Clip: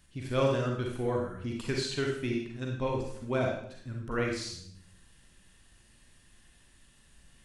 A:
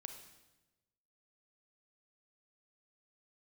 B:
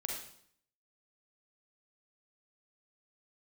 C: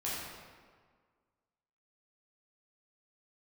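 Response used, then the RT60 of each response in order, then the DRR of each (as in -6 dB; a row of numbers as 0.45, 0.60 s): B; 1.1, 0.65, 1.7 s; 5.5, -1.0, -8.5 dB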